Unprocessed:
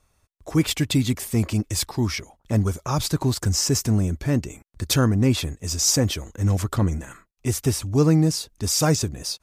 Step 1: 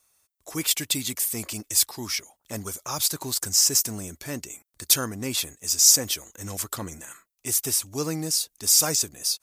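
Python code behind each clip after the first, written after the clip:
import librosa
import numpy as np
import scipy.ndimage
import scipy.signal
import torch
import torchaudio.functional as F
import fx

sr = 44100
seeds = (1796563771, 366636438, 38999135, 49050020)

y = fx.riaa(x, sr, side='recording')
y = F.gain(torch.from_numpy(y), -5.5).numpy()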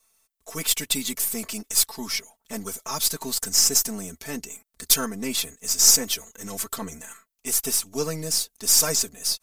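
y = np.where(x < 0.0, 10.0 ** (-3.0 / 20.0) * x, x)
y = y + 0.98 * np.pad(y, (int(4.5 * sr / 1000.0), 0))[:len(y)]
y = F.gain(torch.from_numpy(y), -1.0).numpy()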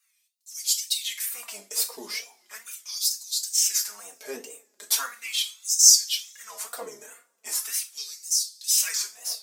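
y = fx.filter_lfo_highpass(x, sr, shape='sine', hz=0.39, low_hz=420.0, high_hz=5500.0, q=2.7)
y = fx.rev_double_slope(y, sr, seeds[0], early_s=0.27, late_s=1.8, knee_db=-28, drr_db=3.0)
y = fx.wow_flutter(y, sr, seeds[1], rate_hz=2.1, depth_cents=130.0)
y = F.gain(torch.from_numpy(y), -7.0).numpy()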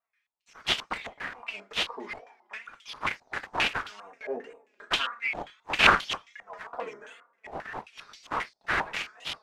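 y = fx.self_delay(x, sr, depth_ms=0.99)
y = fx.filter_held_lowpass(y, sr, hz=7.5, low_hz=740.0, high_hz=3200.0)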